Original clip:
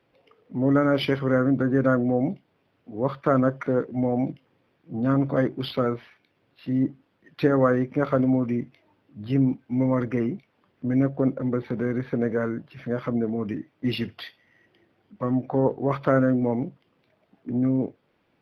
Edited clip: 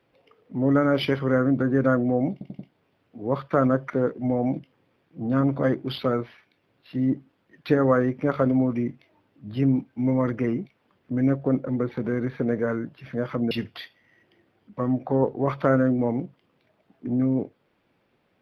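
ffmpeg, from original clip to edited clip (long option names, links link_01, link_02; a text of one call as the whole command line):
ffmpeg -i in.wav -filter_complex "[0:a]asplit=5[link_01][link_02][link_03][link_04][link_05];[link_01]atrim=end=2.412[link_06];[link_02]atrim=start=2.318:end=2.412[link_07];[link_03]atrim=start=2.318:end=2.412[link_08];[link_04]atrim=start=2.318:end=13.242[link_09];[link_05]atrim=start=13.938[link_10];[link_06][link_07]acrossfade=duration=0.004:curve1=hsin:curve2=hsin[link_11];[link_11][link_08]acrossfade=duration=0.004:curve1=hsin:curve2=hsin[link_12];[link_12][link_09]acrossfade=duration=0.004:curve1=hsin:curve2=hsin[link_13];[link_13][link_10]acrossfade=duration=0.004:curve1=hsin:curve2=hsin" out.wav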